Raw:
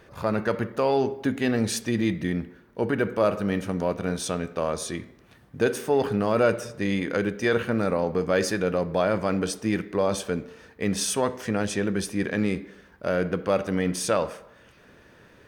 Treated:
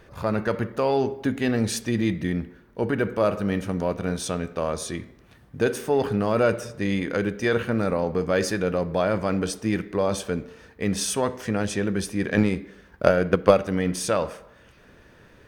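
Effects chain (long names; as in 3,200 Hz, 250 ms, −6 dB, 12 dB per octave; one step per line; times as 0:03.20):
low-shelf EQ 63 Hz +10.5 dB
0:12.31–0:13.57: transient designer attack +12 dB, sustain 0 dB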